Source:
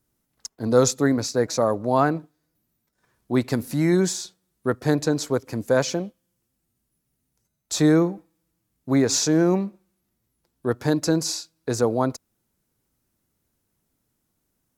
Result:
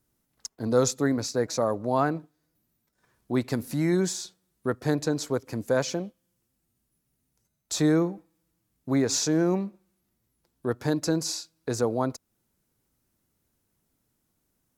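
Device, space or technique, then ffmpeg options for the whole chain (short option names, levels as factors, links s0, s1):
parallel compression: -filter_complex "[0:a]asplit=2[s0][s1];[s1]acompressor=threshold=0.02:ratio=6,volume=0.75[s2];[s0][s2]amix=inputs=2:normalize=0,volume=0.531"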